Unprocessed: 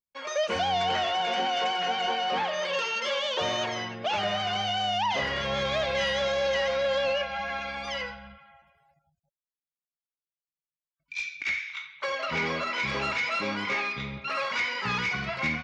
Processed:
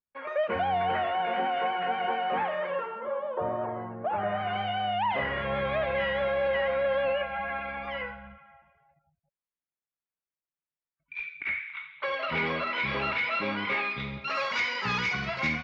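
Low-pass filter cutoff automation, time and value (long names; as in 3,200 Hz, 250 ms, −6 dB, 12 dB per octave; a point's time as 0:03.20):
low-pass filter 24 dB per octave
0:02.56 2,200 Hz
0:03.07 1,200 Hz
0:03.94 1,200 Hz
0:04.58 2,400 Hz
0:11.69 2,400 Hz
0:12.15 3,700 Hz
0:13.87 3,700 Hz
0:14.39 6,700 Hz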